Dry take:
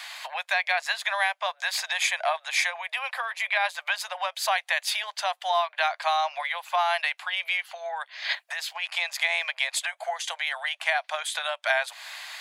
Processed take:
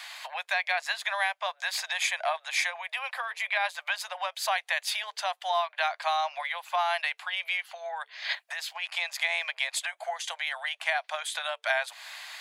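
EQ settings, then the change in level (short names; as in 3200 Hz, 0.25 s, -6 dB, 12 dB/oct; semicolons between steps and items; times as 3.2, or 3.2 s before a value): notches 50/100/150/200/250/300/350/400/450 Hz; -3.0 dB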